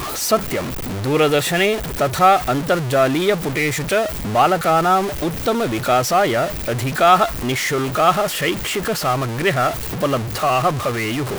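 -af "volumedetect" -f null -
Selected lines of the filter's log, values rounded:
mean_volume: -18.3 dB
max_volume: -1.5 dB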